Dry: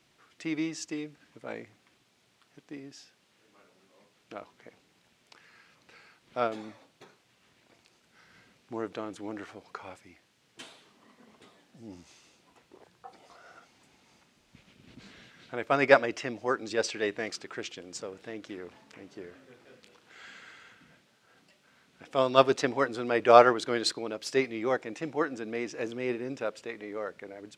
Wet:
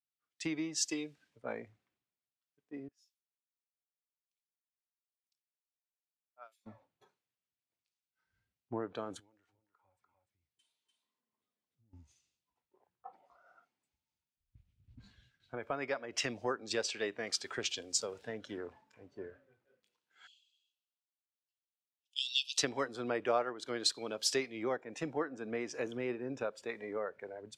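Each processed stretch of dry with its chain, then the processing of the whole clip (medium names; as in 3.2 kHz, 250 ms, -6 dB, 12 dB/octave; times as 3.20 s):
2.88–6.66 s: differentiator + harmonic tremolo 2.3 Hz, depth 100%, crossover 2.3 kHz
9.19–11.93 s: delay 295 ms -4.5 dB + compression 4:1, threshold -56 dBFS
15.02–16.18 s: gate with hold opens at -45 dBFS, closes at -51 dBFS + compression 1.5:1, threshold -44 dBFS
20.27–22.58 s: steep high-pass 2.6 kHz 96 dB/octave + treble shelf 6.2 kHz -5 dB
whole clip: spectral noise reduction 10 dB; compression 6:1, threshold -38 dBFS; three bands expanded up and down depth 100%; trim +2 dB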